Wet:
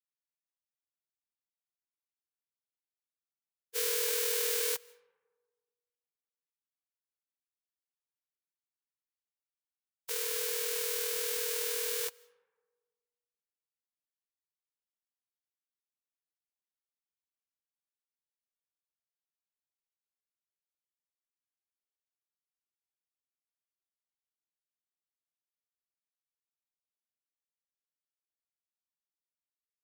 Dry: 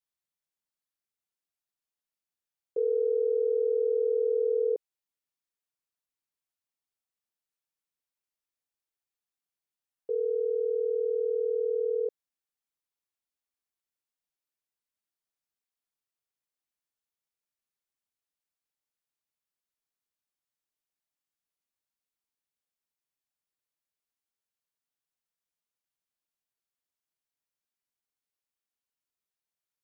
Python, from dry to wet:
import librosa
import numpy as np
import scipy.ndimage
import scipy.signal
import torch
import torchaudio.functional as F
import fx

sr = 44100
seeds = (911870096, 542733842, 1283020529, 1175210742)

p1 = fx.envelope_flatten(x, sr, power=0.1)
p2 = scipy.signal.sosfilt(scipy.signal.butter(2, 300.0, 'highpass', fs=sr, output='sos'), p1)
p3 = fx.peak_eq(p2, sr, hz=420.0, db=-7.5, octaves=1.3)
p4 = fx.rev_freeverb(p3, sr, rt60_s=1.6, hf_ratio=0.35, predelay_ms=120, drr_db=15.5)
p5 = 10.0 ** (-22.5 / 20.0) * np.tanh(p4 / 10.0 ** (-22.5 / 20.0))
p6 = p4 + F.gain(torch.from_numpy(p5), -6.0).numpy()
p7 = fx.spec_freeze(p6, sr, seeds[0], at_s=2.57, hold_s=1.19)
p8 = fx.upward_expand(p7, sr, threshold_db=-49.0, expansion=1.5)
y = F.gain(torch.from_numpy(p8), -5.0).numpy()